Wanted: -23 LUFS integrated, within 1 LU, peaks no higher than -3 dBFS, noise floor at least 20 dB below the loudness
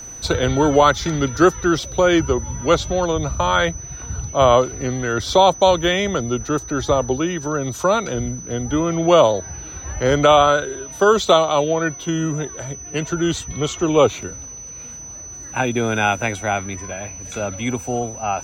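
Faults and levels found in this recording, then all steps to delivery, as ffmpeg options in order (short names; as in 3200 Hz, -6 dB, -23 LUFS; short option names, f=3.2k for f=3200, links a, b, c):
steady tone 6000 Hz; tone level -33 dBFS; loudness -18.5 LUFS; peak -2.0 dBFS; loudness target -23.0 LUFS
-> -af "bandreject=f=6k:w=30"
-af "volume=-4.5dB"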